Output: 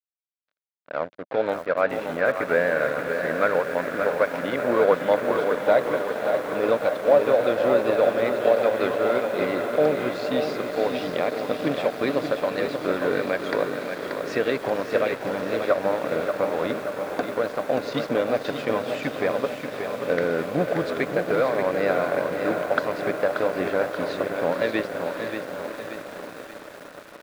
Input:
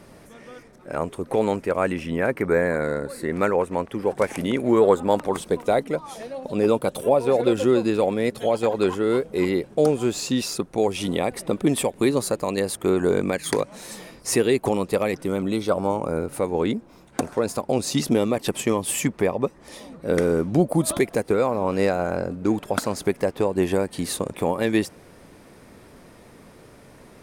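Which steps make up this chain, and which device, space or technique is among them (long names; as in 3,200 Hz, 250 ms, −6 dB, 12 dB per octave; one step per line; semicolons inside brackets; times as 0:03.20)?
feedback delay with all-pass diffusion 548 ms, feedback 79%, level −8 dB
blown loudspeaker (dead-zone distortion −32 dBFS; loudspeaker in its box 190–4,000 Hz, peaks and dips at 210 Hz −8 dB, 370 Hz −9 dB, 590 Hz +6 dB, 870 Hz −5 dB, 1,500 Hz +6 dB, 3,000 Hz −5 dB)
feedback echo at a low word length 582 ms, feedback 55%, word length 7 bits, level −7 dB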